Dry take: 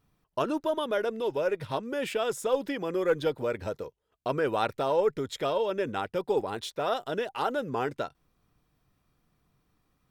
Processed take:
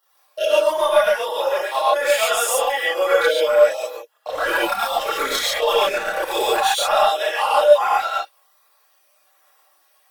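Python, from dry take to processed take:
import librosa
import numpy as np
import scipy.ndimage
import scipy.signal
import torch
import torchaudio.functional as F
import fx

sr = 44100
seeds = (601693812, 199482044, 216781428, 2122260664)

y = fx.spec_dropout(x, sr, seeds[0], share_pct=23)
y = scipy.signal.sosfilt(scipy.signal.cheby2(4, 60, 170.0, 'highpass', fs=sr, output='sos'), y)
y = fx.high_shelf(y, sr, hz=9000.0, db=11.0)
y = y + 0.59 * np.pad(y, (int(3.6 * sr / 1000.0), 0))[:len(y)]
y = fx.leveller(y, sr, passes=3, at=(4.27, 6.6))
y = fx.over_compress(y, sr, threshold_db=-27.0, ratio=-0.5)
y = 10.0 ** (-16.5 / 20.0) * np.tanh(y / 10.0 ** (-16.5 / 20.0))
y = fx.chorus_voices(y, sr, voices=6, hz=0.44, base_ms=29, depth_ms=3.1, mix_pct=65)
y = fx.rev_gated(y, sr, seeds[1], gate_ms=160, shape='rising', drr_db=-4.0)
y = F.gain(torch.from_numpy(y), 9.0).numpy()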